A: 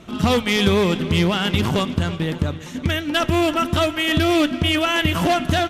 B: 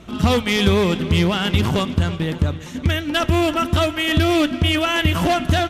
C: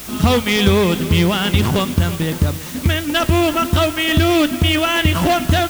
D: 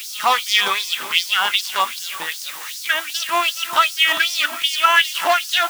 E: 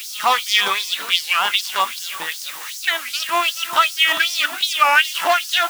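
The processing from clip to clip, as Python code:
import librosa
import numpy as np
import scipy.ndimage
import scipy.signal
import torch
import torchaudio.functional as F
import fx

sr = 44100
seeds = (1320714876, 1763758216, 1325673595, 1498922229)

y1 = fx.peak_eq(x, sr, hz=63.0, db=8.5, octaves=0.92)
y2 = fx.quant_dither(y1, sr, seeds[0], bits=6, dither='triangular')
y2 = F.gain(torch.from_numpy(y2), 2.5).numpy()
y3 = fx.filter_lfo_highpass(y2, sr, shape='sine', hz=2.6, low_hz=890.0, high_hz=5300.0, q=3.4)
y3 = F.gain(torch.from_numpy(y3), -1.0).numpy()
y4 = fx.record_warp(y3, sr, rpm=33.33, depth_cents=250.0)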